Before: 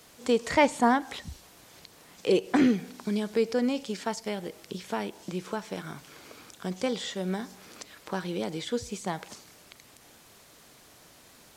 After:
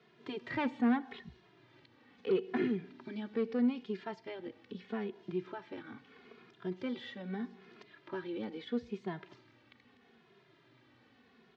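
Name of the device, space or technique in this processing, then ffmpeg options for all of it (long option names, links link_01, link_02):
barber-pole flanger into a guitar amplifier: -filter_complex "[0:a]asplit=2[link_01][link_02];[link_02]adelay=2.4,afreqshift=-0.78[link_03];[link_01][link_03]amix=inputs=2:normalize=1,asoftclip=type=tanh:threshold=-22dB,highpass=100,equalizer=frequency=120:width_type=q:width=4:gain=9,equalizer=frequency=240:width_type=q:width=4:gain=8,equalizer=frequency=380:width_type=q:width=4:gain=9,equalizer=frequency=570:width_type=q:width=4:gain=-5,equalizer=frequency=1800:width_type=q:width=4:gain=4,lowpass=frequency=3600:width=0.5412,lowpass=frequency=3600:width=1.3066,volume=-7dB"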